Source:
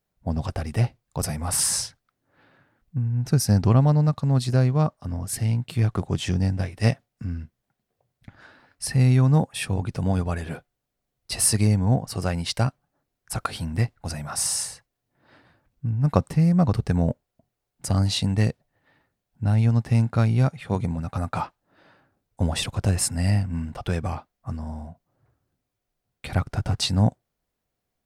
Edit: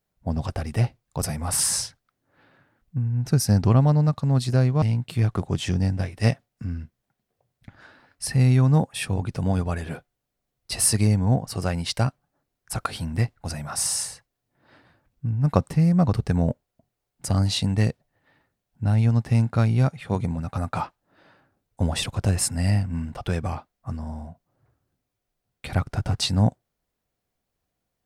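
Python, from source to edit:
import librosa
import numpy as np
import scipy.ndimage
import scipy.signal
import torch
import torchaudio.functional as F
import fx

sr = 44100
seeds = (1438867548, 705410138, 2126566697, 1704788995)

y = fx.edit(x, sr, fx.cut(start_s=4.82, length_s=0.6), tone=tone)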